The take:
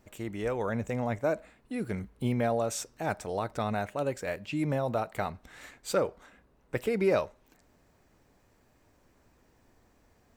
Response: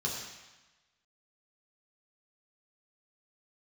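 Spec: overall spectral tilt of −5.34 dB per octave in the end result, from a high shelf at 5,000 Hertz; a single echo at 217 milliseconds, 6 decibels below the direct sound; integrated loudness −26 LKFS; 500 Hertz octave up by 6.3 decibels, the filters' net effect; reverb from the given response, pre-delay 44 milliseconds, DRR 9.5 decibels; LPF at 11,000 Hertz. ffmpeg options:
-filter_complex "[0:a]lowpass=11000,equalizer=frequency=500:width_type=o:gain=7.5,highshelf=frequency=5000:gain=9,aecho=1:1:217:0.501,asplit=2[link_01][link_02];[1:a]atrim=start_sample=2205,adelay=44[link_03];[link_02][link_03]afir=irnorm=-1:irlink=0,volume=-14.5dB[link_04];[link_01][link_04]amix=inputs=2:normalize=0"

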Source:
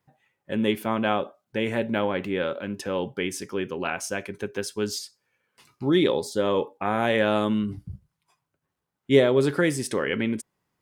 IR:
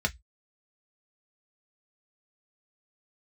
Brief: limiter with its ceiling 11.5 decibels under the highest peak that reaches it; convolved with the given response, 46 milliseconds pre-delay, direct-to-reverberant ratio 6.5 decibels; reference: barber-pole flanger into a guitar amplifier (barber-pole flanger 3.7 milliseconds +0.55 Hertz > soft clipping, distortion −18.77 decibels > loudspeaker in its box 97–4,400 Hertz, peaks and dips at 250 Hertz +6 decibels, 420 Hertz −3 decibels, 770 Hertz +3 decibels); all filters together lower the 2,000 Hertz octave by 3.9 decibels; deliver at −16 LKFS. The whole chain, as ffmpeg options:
-filter_complex "[0:a]equalizer=frequency=2000:width_type=o:gain=-5,alimiter=limit=-17dB:level=0:latency=1,asplit=2[link_01][link_02];[1:a]atrim=start_sample=2205,adelay=46[link_03];[link_02][link_03]afir=irnorm=-1:irlink=0,volume=-15dB[link_04];[link_01][link_04]amix=inputs=2:normalize=0,asplit=2[link_05][link_06];[link_06]adelay=3.7,afreqshift=0.55[link_07];[link_05][link_07]amix=inputs=2:normalize=1,asoftclip=threshold=-21.5dB,highpass=97,equalizer=frequency=250:width_type=q:width=4:gain=6,equalizer=frequency=420:width_type=q:width=4:gain=-3,equalizer=frequency=770:width_type=q:width=4:gain=3,lowpass=frequency=4400:width=0.5412,lowpass=frequency=4400:width=1.3066,volume=16dB"

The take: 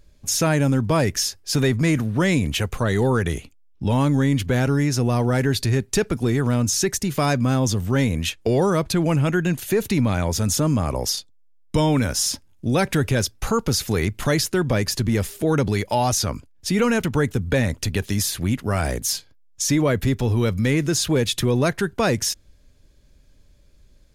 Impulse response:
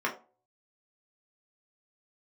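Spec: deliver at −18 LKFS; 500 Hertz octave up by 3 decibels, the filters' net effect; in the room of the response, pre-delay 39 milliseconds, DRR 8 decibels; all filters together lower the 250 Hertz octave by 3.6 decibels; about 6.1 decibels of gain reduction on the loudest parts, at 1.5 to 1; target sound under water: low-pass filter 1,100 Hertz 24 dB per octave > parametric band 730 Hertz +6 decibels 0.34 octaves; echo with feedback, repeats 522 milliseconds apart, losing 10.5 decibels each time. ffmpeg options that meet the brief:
-filter_complex "[0:a]equalizer=frequency=250:width_type=o:gain=-6.5,equalizer=frequency=500:width_type=o:gain=4.5,acompressor=threshold=-32dB:ratio=1.5,aecho=1:1:522|1044|1566:0.299|0.0896|0.0269,asplit=2[link_01][link_02];[1:a]atrim=start_sample=2205,adelay=39[link_03];[link_02][link_03]afir=irnorm=-1:irlink=0,volume=-17.5dB[link_04];[link_01][link_04]amix=inputs=2:normalize=0,lowpass=frequency=1100:width=0.5412,lowpass=frequency=1100:width=1.3066,equalizer=frequency=730:width_type=o:width=0.34:gain=6,volume=9.5dB"

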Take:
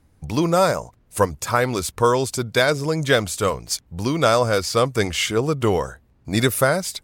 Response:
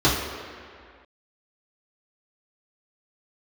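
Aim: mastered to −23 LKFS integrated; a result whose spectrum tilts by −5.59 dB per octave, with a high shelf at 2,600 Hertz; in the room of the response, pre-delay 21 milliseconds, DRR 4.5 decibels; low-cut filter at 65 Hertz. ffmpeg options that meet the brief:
-filter_complex "[0:a]highpass=65,highshelf=frequency=2600:gain=-5.5,asplit=2[link_01][link_02];[1:a]atrim=start_sample=2205,adelay=21[link_03];[link_02][link_03]afir=irnorm=-1:irlink=0,volume=-24dB[link_04];[link_01][link_04]amix=inputs=2:normalize=0,volume=-4dB"

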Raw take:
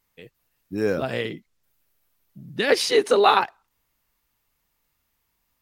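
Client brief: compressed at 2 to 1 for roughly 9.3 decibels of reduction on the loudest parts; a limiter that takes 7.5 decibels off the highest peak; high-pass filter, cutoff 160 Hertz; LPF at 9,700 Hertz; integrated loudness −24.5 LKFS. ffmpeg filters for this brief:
ffmpeg -i in.wav -af "highpass=160,lowpass=9700,acompressor=threshold=-30dB:ratio=2,volume=7.5dB,alimiter=limit=-12.5dB:level=0:latency=1" out.wav

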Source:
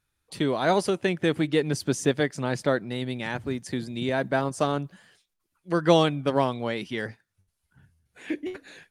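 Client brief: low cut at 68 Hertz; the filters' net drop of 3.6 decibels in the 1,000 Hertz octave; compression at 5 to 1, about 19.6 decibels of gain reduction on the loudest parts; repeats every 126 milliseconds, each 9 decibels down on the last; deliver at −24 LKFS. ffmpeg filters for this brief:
ffmpeg -i in.wav -af "highpass=68,equalizer=frequency=1000:width_type=o:gain=-5,acompressor=threshold=-37dB:ratio=5,aecho=1:1:126|252|378|504:0.355|0.124|0.0435|0.0152,volume=16.5dB" out.wav

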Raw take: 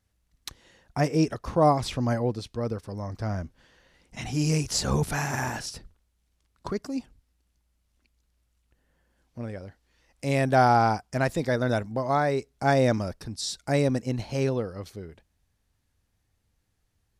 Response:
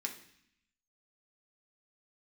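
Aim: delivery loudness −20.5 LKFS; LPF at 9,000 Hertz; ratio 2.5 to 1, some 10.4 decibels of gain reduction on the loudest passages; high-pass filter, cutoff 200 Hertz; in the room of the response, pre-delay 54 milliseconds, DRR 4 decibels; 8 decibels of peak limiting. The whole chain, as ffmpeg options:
-filter_complex "[0:a]highpass=200,lowpass=9000,acompressor=threshold=-31dB:ratio=2.5,alimiter=level_in=0.5dB:limit=-24dB:level=0:latency=1,volume=-0.5dB,asplit=2[link_01][link_02];[1:a]atrim=start_sample=2205,adelay=54[link_03];[link_02][link_03]afir=irnorm=-1:irlink=0,volume=-4.5dB[link_04];[link_01][link_04]amix=inputs=2:normalize=0,volume=15.5dB"

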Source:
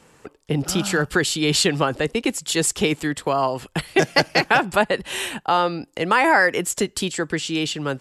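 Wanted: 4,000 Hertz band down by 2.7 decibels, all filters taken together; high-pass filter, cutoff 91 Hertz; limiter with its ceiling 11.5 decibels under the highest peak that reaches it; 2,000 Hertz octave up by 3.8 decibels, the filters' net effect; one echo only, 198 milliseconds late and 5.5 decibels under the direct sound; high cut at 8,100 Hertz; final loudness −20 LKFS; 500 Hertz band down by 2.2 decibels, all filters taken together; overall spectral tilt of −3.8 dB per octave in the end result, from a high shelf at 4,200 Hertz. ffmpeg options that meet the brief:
ffmpeg -i in.wav -af "highpass=91,lowpass=8100,equalizer=frequency=500:width_type=o:gain=-3,equalizer=frequency=2000:width_type=o:gain=6.5,equalizer=frequency=4000:width_type=o:gain=-4,highshelf=frequency=4200:gain=-3.5,alimiter=limit=-13.5dB:level=0:latency=1,aecho=1:1:198:0.531,volume=4dB" out.wav

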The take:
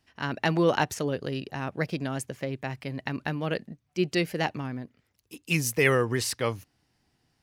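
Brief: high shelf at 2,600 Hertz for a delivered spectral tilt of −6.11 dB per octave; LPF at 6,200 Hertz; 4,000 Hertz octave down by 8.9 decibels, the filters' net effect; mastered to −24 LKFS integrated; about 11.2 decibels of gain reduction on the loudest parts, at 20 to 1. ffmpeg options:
ffmpeg -i in.wav -af "lowpass=6200,highshelf=frequency=2600:gain=-8,equalizer=frequency=4000:width_type=o:gain=-5,acompressor=threshold=-30dB:ratio=20,volume=13dB" out.wav

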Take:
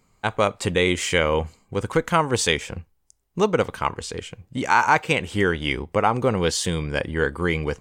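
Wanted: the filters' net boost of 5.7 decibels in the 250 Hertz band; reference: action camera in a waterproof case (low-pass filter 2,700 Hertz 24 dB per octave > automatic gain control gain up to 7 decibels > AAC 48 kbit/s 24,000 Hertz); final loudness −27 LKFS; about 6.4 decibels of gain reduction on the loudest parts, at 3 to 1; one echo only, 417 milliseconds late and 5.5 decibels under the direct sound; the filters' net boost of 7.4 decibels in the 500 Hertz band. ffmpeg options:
ffmpeg -i in.wav -af "equalizer=frequency=250:width_type=o:gain=5.5,equalizer=frequency=500:width_type=o:gain=7,acompressor=threshold=-17dB:ratio=3,lowpass=frequency=2700:width=0.5412,lowpass=frequency=2700:width=1.3066,aecho=1:1:417:0.531,dynaudnorm=maxgain=7dB,volume=-5dB" -ar 24000 -c:a aac -b:a 48k out.aac

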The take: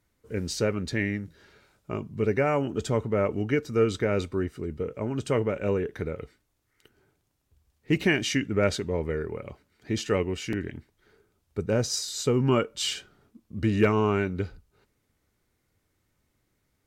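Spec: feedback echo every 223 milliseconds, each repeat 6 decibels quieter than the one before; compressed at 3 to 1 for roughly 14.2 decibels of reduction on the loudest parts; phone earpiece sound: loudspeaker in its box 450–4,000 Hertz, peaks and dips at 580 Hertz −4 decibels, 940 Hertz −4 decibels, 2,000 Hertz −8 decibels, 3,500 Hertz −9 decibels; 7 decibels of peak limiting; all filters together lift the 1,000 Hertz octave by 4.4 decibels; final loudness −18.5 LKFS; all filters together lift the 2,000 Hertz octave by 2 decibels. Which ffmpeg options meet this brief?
ffmpeg -i in.wav -af "equalizer=frequency=1000:width_type=o:gain=7,equalizer=frequency=2000:width_type=o:gain=5.5,acompressor=threshold=-35dB:ratio=3,alimiter=level_in=3dB:limit=-24dB:level=0:latency=1,volume=-3dB,highpass=450,equalizer=frequency=580:width_type=q:width=4:gain=-4,equalizer=frequency=940:width_type=q:width=4:gain=-4,equalizer=frequency=2000:width_type=q:width=4:gain=-8,equalizer=frequency=3500:width_type=q:width=4:gain=-9,lowpass=frequency=4000:width=0.5412,lowpass=frequency=4000:width=1.3066,aecho=1:1:223|446|669|892|1115|1338:0.501|0.251|0.125|0.0626|0.0313|0.0157,volume=25.5dB" out.wav

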